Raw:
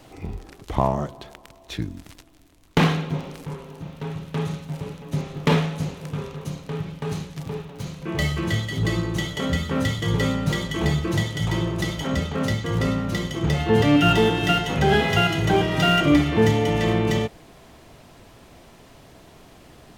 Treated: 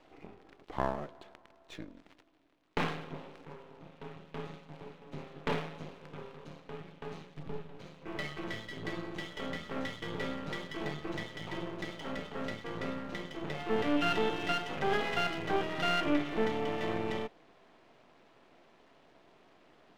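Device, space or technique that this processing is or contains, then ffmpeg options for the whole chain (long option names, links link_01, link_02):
crystal radio: -filter_complex "[0:a]highpass=260,lowpass=3200,aeval=exprs='if(lt(val(0),0),0.251*val(0),val(0))':channel_layout=same,asettb=1/sr,asplit=3[link_01][link_02][link_03];[link_01]atrim=end=7.374[link_04];[link_02]atrim=start=7.37:end=7.78,asetpts=PTS-STARTPTS,afade=type=in:duration=0.004:curve=qsin,afade=type=out:start_time=0.406:duration=0.004:curve=qsin,lowshelf=frequency=200:gain=12[link_05];[link_03]atrim=start=7.776[link_06];[link_04][link_05]acrossfade=duration=0.004:curve1=hsin:curve2=qsin[link_07];[link_07][link_06]acrossfade=duration=0.004:curve1=qsin:curve2=hsin,volume=-7.5dB"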